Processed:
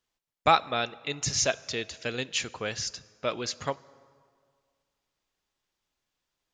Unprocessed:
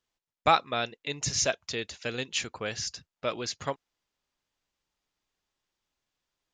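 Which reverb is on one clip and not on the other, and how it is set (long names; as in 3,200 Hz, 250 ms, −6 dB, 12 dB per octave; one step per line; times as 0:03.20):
dense smooth reverb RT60 2 s, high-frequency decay 0.65×, DRR 19 dB
level +1 dB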